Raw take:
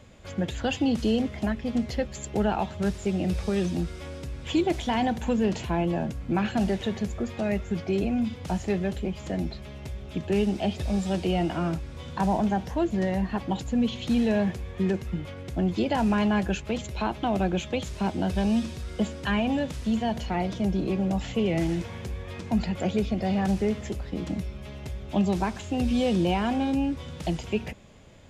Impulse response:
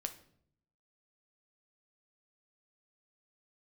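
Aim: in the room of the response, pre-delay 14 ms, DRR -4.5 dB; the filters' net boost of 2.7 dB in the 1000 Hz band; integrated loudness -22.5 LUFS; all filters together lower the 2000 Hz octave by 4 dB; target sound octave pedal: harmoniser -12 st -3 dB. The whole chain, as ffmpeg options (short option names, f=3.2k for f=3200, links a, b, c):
-filter_complex "[0:a]equalizer=f=1k:t=o:g=5,equalizer=f=2k:t=o:g=-7,asplit=2[a][b];[1:a]atrim=start_sample=2205,adelay=14[c];[b][c]afir=irnorm=-1:irlink=0,volume=5.5dB[d];[a][d]amix=inputs=2:normalize=0,asplit=2[e][f];[f]asetrate=22050,aresample=44100,atempo=2,volume=-3dB[g];[e][g]amix=inputs=2:normalize=0,volume=-2dB"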